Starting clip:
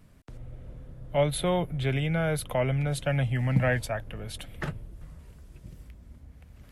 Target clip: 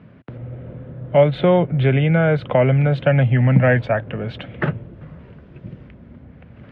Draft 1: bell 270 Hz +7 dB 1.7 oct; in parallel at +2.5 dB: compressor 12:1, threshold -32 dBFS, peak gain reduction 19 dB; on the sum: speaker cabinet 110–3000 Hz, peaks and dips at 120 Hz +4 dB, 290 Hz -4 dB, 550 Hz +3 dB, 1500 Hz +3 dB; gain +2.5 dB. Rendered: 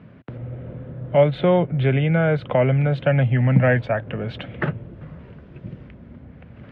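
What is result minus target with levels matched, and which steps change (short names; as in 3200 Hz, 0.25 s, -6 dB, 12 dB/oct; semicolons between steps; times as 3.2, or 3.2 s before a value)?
compressor: peak gain reduction +8 dB
change: compressor 12:1, threshold -23.5 dBFS, peak gain reduction 11.5 dB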